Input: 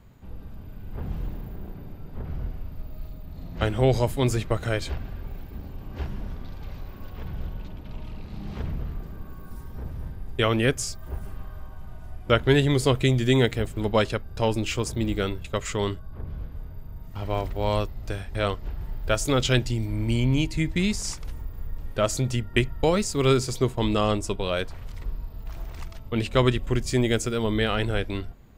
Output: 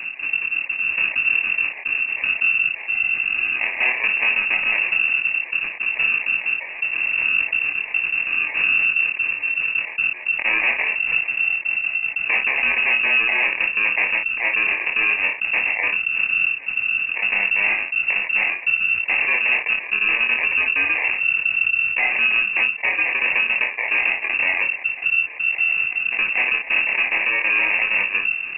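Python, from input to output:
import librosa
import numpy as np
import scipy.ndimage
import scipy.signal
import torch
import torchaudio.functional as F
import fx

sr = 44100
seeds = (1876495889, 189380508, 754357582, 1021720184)

p1 = fx.spec_dropout(x, sr, seeds[0], share_pct=38)
p2 = fx.dynamic_eq(p1, sr, hz=760.0, q=0.89, threshold_db=-39.0, ratio=4.0, max_db=-6)
p3 = fx.rider(p2, sr, range_db=4, speed_s=0.5)
p4 = p2 + (p3 * librosa.db_to_amplitude(-2.0))
p5 = fx.sample_hold(p4, sr, seeds[1], rate_hz=1300.0, jitter_pct=0)
p6 = 10.0 ** (-17.0 / 20.0) * (np.abs((p5 / 10.0 ** (-17.0 / 20.0) + 3.0) % 4.0 - 2.0) - 1.0)
p7 = p6 + fx.room_early_taps(p6, sr, ms=(24, 56), db=(-5.0, -12.0), dry=0)
p8 = fx.freq_invert(p7, sr, carrier_hz=2700)
y = fx.env_flatten(p8, sr, amount_pct=50)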